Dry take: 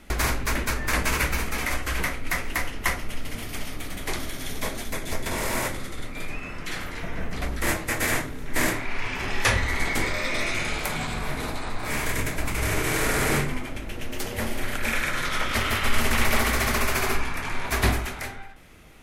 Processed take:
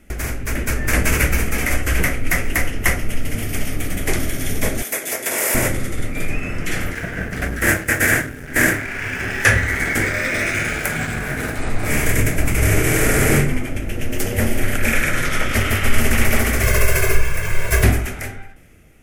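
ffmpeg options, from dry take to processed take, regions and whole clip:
-filter_complex "[0:a]asettb=1/sr,asplit=3[s0][s1][s2];[s0]atrim=end=4.824[s3];[s1]atrim=start=4.82:end=5.55,asetpts=PTS-STARTPTS,afade=t=in:d=0.004:c=qsin,afade=t=out:st=0.726:d=0.004:c=qsin,highpass=480,highshelf=f=10000:g=9[s4];[s2]atrim=start=5.546[s5];[s3][s4]acrossfade=d=0.004:c1=hsin:c2=qsin[s6];[s6][s5]acrossfade=d=0.004:c1=qsin:c2=hsin,asettb=1/sr,asplit=3[s7][s8][s9];[s7]atrim=end=6.934[s10];[s8]atrim=start=6.93:end=11.59,asetpts=PTS-STARTPTS,afade=t=in:d=0.004:c=qsin,afade=t=out:st=4.656:d=0.004:c=qsin,highpass=f=66:p=1,aeval=exprs='sgn(val(0))*max(abs(val(0))-0.00794,0)':c=same,equalizer=f=1600:t=o:w=0.43:g=10[s11];[s9]atrim=start=11.586[s12];[s10][s11]acrossfade=d=0.004:c1=hsin:c2=qsin[s13];[s13][s12]acrossfade=d=0.004:c1=qsin:c2=hsin,asettb=1/sr,asplit=3[s14][s15][s16];[s14]atrim=end=16.634[s17];[s15]atrim=start=16.63:end=17.84,asetpts=PTS-STARTPTS,afade=t=in:d=0.004:c=qsin,afade=t=out:st=1.206:d=0.004:c=qsin,acrusher=bits=5:mix=0:aa=0.5,aecho=1:1:1.9:0.94,atrim=end_sample=53361[s18];[s16]atrim=start=17.836[s19];[s17][s18]acrossfade=d=0.004:c1=hsin:c2=qsin[s20];[s20][s19]acrossfade=d=0.004:c1=qsin:c2=hsin,equalizer=f=100:t=o:w=0.67:g=4,equalizer=f=1000:t=o:w=0.67:g=-12,equalizer=f=4000:t=o:w=0.67:g=-12,dynaudnorm=f=140:g=9:m=3.76"

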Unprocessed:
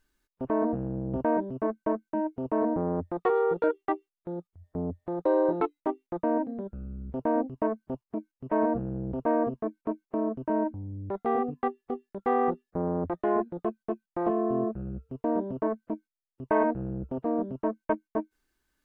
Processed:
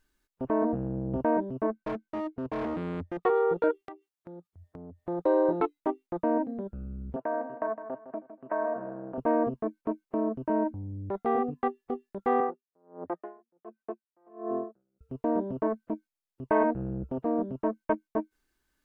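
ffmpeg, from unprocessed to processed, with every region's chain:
-filter_complex "[0:a]asettb=1/sr,asplit=3[s0][s1][s2];[s0]atrim=end=1.714[s3];[s1]atrim=start=1.71:end=3.23,asetpts=PTS-STARTPTS,afade=t=in:d=0.004:c=qsin,afade=t=out:st=1.516:d=0.004:c=qsin,asoftclip=type=hard:threshold=0.0335,lowpass=f=2500:p=1[s4];[s2]atrim=start=3.226[s5];[s3][s4]acrossfade=d=0.004:c1=hsin:c2=qsin[s6];[s6][s5]acrossfade=d=0.004:c1=qsin:c2=hsin,asettb=1/sr,asplit=3[s7][s8][s9];[s7]atrim=end=3.814[s10];[s8]atrim=start=3.81:end=5,asetpts=PTS-STARTPTS,afade=t=in:d=0.004:c=qsin,afade=t=out:st=1.186:d=0.004:c=qsin,highpass=60,acompressor=threshold=0.00708:ratio=4:attack=3.2:release=140:knee=1:detection=peak[s11];[s9]atrim=start=4.996[s12];[s10][s11]acrossfade=d=0.004:c1=hsin:c2=qsin[s13];[s13][s12]acrossfade=d=0.004:c1=qsin:c2=hsin,asettb=1/sr,asplit=3[s14][s15][s16];[s14]atrim=end=7.164[s17];[s15]atrim=start=7.16:end=9.18,asetpts=PTS-STARTPTS,afade=t=in:d=0.004:c=qsin,afade=t=out:st=2.016:d=0.004:c=qsin,acompressor=threshold=0.0355:ratio=6:attack=3.2:release=140:knee=1:detection=peak,highpass=340,equalizer=f=420:t=q:w=4:g=-4,equalizer=f=660:t=q:w=4:g=8,equalizer=f=1100:t=q:w=4:g=6,equalizer=f=1600:t=q:w=4:g=9,lowpass=f=2500:w=0.5412,lowpass=f=2500:w=1.3066,aecho=1:1:159|318|477|636:0.282|0.093|0.0307|0.0101,atrim=end_sample=89082[s18];[s16]atrim=start=9.176[s19];[s17][s18]acrossfade=d=0.004:c1=hsin:c2=qsin[s20];[s20][s19]acrossfade=d=0.004:c1=qsin:c2=hsin,asettb=1/sr,asplit=3[s21][s22][s23];[s21]atrim=end=12.404[s24];[s22]atrim=start=12.4:end=15.01,asetpts=PTS-STARTPTS,afade=t=in:d=0.004:c=qsin,afade=t=out:st=2.606:d=0.004:c=qsin,highpass=330,lowpass=2100,aeval=exprs='val(0)*pow(10,-36*(0.5-0.5*cos(2*PI*1.4*n/s))/20)':c=same[s25];[s23]atrim=start=15.006[s26];[s24][s25]acrossfade=d=0.004:c1=hsin:c2=qsin[s27];[s27][s26]acrossfade=d=0.004:c1=qsin:c2=hsin"

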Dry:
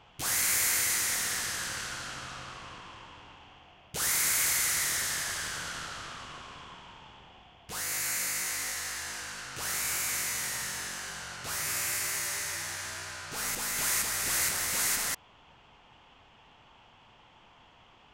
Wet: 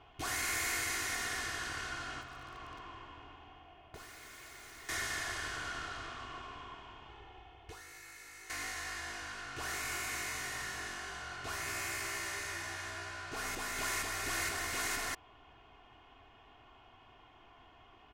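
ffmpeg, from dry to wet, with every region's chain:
-filter_complex "[0:a]asettb=1/sr,asplit=3[s0][s1][s2];[s0]atrim=end=2.214[s3];[s1]atrim=start=2.21:end=4.89,asetpts=PTS-STARTPTS,afade=t=in:d=0.004:c=qsin,afade=t=out:st=2.676:d=0.004:c=qsin,highshelf=f=3000:g=-3,acompressor=threshold=0.00794:ratio=6:attack=3.2:release=140:knee=1:detection=peak,aeval=exprs='(mod(75*val(0)+1,2)-1)/75':c=same[s4];[s2]atrim=start=4.886[s5];[s3][s4]acrossfade=d=0.004:c1=hsin:c2=qsin[s6];[s6][s5]acrossfade=d=0.004:c1=qsin:c2=hsin,asettb=1/sr,asplit=3[s7][s8][s9];[s7]atrim=end=7.094[s10];[s8]atrim=start=7.09:end=8.5,asetpts=PTS-STARTPTS,afade=t=in:d=0.004:c=qsin,afade=t=out:st=1.406:d=0.004:c=qsin,aecho=1:1:2.3:0.53,atrim=end_sample=62181,acompressor=threshold=0.00891:ratio=12:attack=3.2:release=140:knee=1:detection=peak[s11];[s9]atrim=start=8.496[s12];[s10][s11]acrossfade=d=0.004:c1=hsin:c2=qsin[s13];[s13][s12]acrossfade=d=0.004:c1=qsin:c2=hsin,lowpass=f=2100:p=1,aecho=1:1:2.8:0.63,volume=0.841"

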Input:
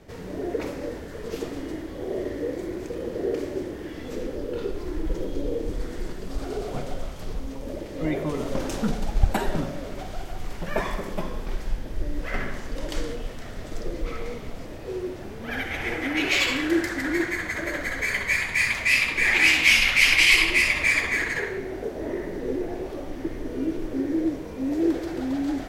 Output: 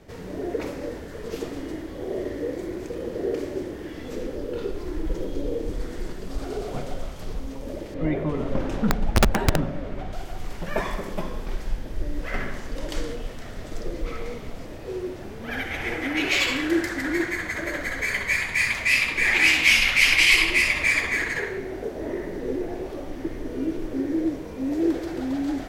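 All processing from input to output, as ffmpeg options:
-filter_complex "[0:a]asettb=1/sr,asplit=3[s0][s1][s2];[s0]atrim=end=7.944[s3];[s1]atrim=start=7.94:end=10.13,asetpts=PTS-STARTPTS,afade=t=in:d=0.004:c=qsin,afade=t=out:st=2.186:d=0.004:c=qsin,bass=f=250:g=4,treble=f=4000:g=-14,aeval=exprs='(mod(3.55*val(0)+1,2)-1)/3.55':c=same[s4];[s2]atrim=start=10.126[s5];[s3][s4]acrossfade=d=0.004:c1=hsin:c2=qsin[s6];[s6][s5]acrossfade=d=0.004:c1=qsin:c2=hsin"

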